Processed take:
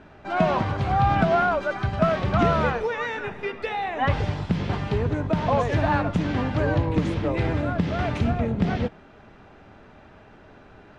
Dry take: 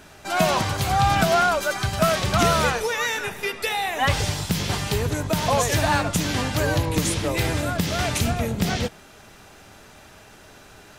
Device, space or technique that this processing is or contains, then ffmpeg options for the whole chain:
phone in a pocket: -af "lowpass=3200,equalizer=frequency=250:width_type=o:width=0.77:gain=2.5,highshelf=frequency=2300:gain=-11"

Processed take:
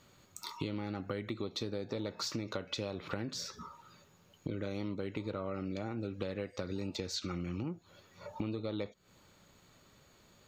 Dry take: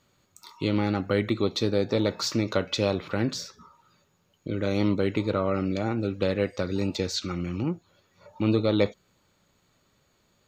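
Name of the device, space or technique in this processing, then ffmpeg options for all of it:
serial compression, leveller first: -af "acompressor=threshold=-34dB:ratio=1.5,acompressor=threshold=-39dB:ratio=6,volume=4dB"

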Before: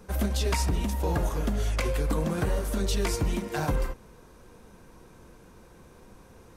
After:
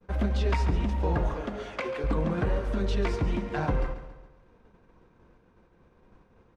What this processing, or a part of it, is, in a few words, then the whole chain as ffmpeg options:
hearing-loss simulation: -filter_complex "[0:a]asettb=1/sr,asplit=3[link_01][link_02][link_03];[link_01]atrim=end=1.344[link_04];[link_02]atrim=start=1.34:end=2.04,asetpts=PTS-STARTPTS,afade=type=in:duration=0.004:curve=qsin,afade=type=out:start_time=0.696:duration=0.004:curve=qsin,highpass=280[link_05];[link_03]atrim=start=2.036[link_06];[link_04][link_05]acrossfade=duration=0.004:curve1=hsin:curve2=qsin[link_07];[link_07][link_06]acrossfade=duration=0.004:curve1=qsin:curve2=hsin,lowpass=2800,agate=range=-33dB:threshold=-44dB:ratio=3:detection=peak,aecho=1:1:139|278|417|556|695:0.224|0.103|0.0474|0.0218|0.01"

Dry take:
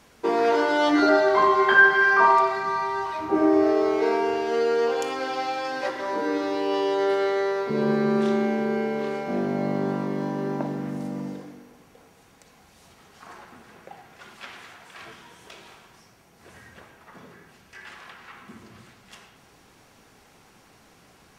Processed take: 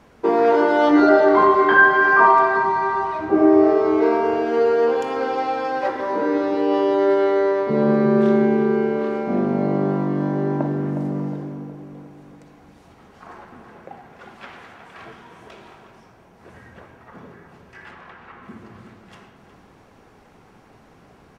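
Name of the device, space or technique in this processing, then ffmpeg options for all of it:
through cloth: -filter_complex "[0:a]highshelf=frequency=2500:gain=-15,asettb=1/sr,asplit=3[link_01][link_02][link_03];[link_01]atrim=end=17.914[link_04];[link_02]atrim=start=17.91:end=18.43,asetpts=PTS-STARTPTS,afade=type=in:duration=0.004:curve=qsin,afade=type=out:start_time=0.516:duration=0.004:curve=qsin,highshelf=frequency=4100:gain=-8.5[link_05];[link_03]atrim=start=18.426[link_06];[link_04][link_05]acrossfade=duration=0.004:curve1=hsin:curve2=qsin[link_07];[link_07][link_06]acrossfade=duration=0.004:curve1=qsin:curve2=hsin,asplit=2[link_08][link_09];[link_09]adelay=363,lowpass=frequency=2000:poles=1,volume=-8.5dB,asplit=2[link_10][link_11];[link_11]adelay=363,lowpass=frequency=2000:poles=1,volume=0.47,asplit=2[link_12][link_13];[link_13]adelay=363,lowpass=frequency=2000:poles=1,volume=0.47,asplit=2[link_14][link_15];[link_15]adelay=363,lowpass=frequency=2000:poles=1,volume=0.47,asplit=2[link_16][link_17];[link_17]adelay=363,lowpass=frequency=2000:poles=1,volume=0.47[link_18];[link_08][link_10][link_12][link_14][link_16][link_18]amix=inputs=6:normalize=0,volume=6dB"

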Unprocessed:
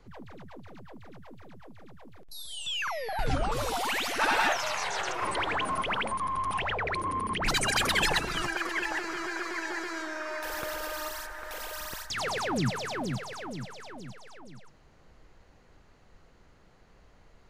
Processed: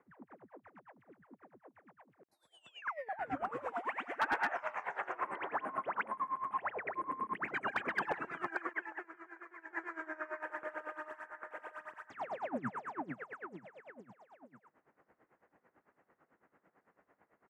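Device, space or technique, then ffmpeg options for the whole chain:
helicopter radio: -filter_complex "[0:a]acrossover=split=4400[link_01][link_02];[link_02]acompressor=threshold=-46dB:ratio=4:attack=1:release=60[link_03];[link_01][link_03]amix=inputs=2:normalize=0,asettb=1/sr,asplit=3[link_04][link_05][link_06];[link_04]atrim=end=8.734[link_07];[link_05]atrim=start=8.73:end=9.73,asetpts=PTS-STARTPTS,afade=type=in:duration=0.004:curve=qsin,afade=type=out:start_time=0.996:duration=0.004:curve=qsin,agate=range=-33dB:threshold=-26dB:ratio=3:detection=peak[link_08];[link_06]atrim=start=9.726[link_09];[link_07][link_08]acrossfade=duration=0.004:curve1=hsin:curve2=qsin[link_10];[link_10][link_09]acrossfade=duration=0.004:curve1=qsin:curve2=hsin,highpass=400,lowpass=2900,firequalizer=gain_entry='entry(270,0);entry(430,-6);entry(1800,-5);entry(4000,-30);entry(7600,-6)':delay=0.05:min_phase=1,aeval=exprs='val(0)*pow(10,-18*(0.5-0.5*cos(2*PI*9*n/s))/20)':channel_layout=same,asoftclip=type=hard:threshold=-29.5dB,volume=4dB"

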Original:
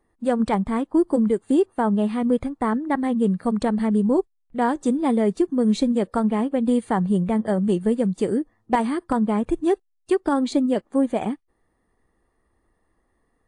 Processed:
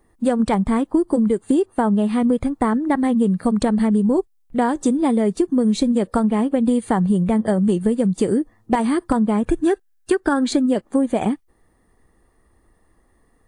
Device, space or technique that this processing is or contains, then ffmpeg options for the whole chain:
ASMR close-microphone chain: -filter_complex "[0:a]asettb=1/sr,asplit=3[link_01][link_02][link_03];[link_01]atrim=end=9.454[link_04];[link_02]atrim=start=9.45:end=10.7,asetpts=PTS-STARTPTS,afade=type=in:duration=0.004:curve=qsin,afade=type=out:start_time=1.246:duration=0.004:curve=qsin,equalizer=frequency=1600:width_type=o:width=0.33:gain=13[link_05];[link_03]atrim=start=10.696[link_06];[link_04][link_05]acrossfade=duration=0.004:curve1=hsin:curve2=qsin[link_07];[link_07][link_06]acrossfade=duration=0.004:curve1=qsin:curve2=hsin,lowshelf=frequency=230:gain=4,acompressor=threshold=-21dB:ratio=6,highshelf=frequency=7000:gain=7.5,volume=6.5dB"

